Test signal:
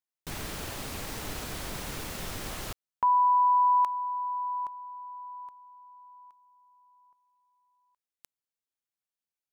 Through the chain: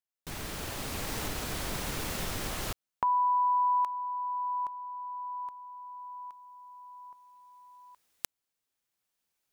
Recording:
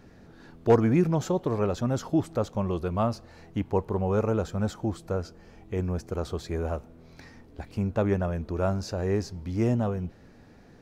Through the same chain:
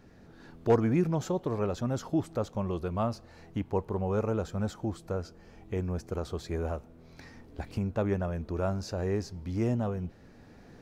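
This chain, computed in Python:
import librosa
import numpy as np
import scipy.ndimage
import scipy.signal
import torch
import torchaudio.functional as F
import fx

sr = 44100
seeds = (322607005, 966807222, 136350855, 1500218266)

y = fx.recorder_agc(x, sr, target_db=-19.5, rise_db_per_s=5.6, max_gain_db=30)
y = y * librosa.db_to_amplitude(-4.0)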